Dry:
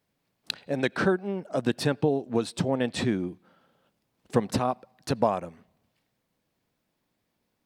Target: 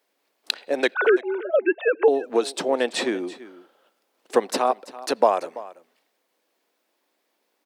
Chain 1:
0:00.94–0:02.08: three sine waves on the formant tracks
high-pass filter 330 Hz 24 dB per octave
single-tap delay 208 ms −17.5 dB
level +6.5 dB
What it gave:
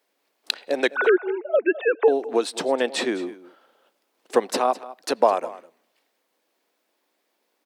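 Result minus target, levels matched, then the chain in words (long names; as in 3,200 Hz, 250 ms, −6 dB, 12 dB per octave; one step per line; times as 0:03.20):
echo 127 ms early
0:00.94–0:02.08: three sine waves on the formant tracks
high-pass filter 330 Hz 24 dB per octave
single-tap delay 335 ms −17.5 dB
level +6.5 dB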